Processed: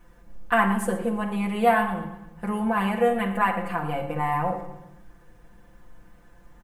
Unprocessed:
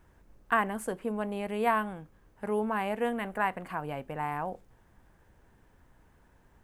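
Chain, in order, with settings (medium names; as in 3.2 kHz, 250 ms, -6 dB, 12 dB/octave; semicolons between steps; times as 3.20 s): comb 5.8 ms, depth 97%; feedback delay 117 ms, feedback 48%, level -16 dB; reverberation RT60 0.75 s, pre-delay 4 ms, DRR 3.5 dB; trim +2.5 dB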